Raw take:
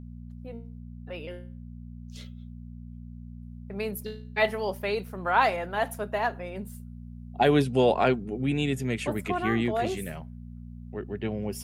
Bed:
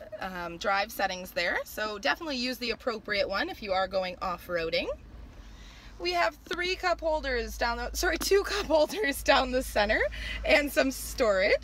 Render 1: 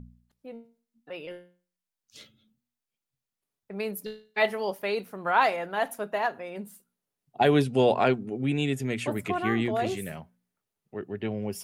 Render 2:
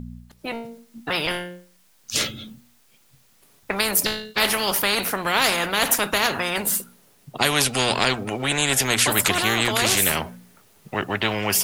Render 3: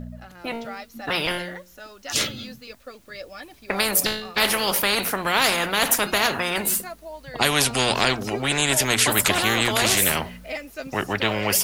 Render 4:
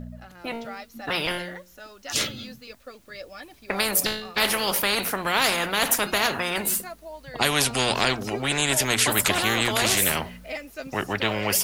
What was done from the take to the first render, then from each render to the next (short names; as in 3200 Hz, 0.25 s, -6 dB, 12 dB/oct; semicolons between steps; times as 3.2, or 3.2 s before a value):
de-hum 60 Hz, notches 4
AGC gain up to 10.5 dB; spectral compressor 4:1
add bed -9.5 dB
gain -2 dB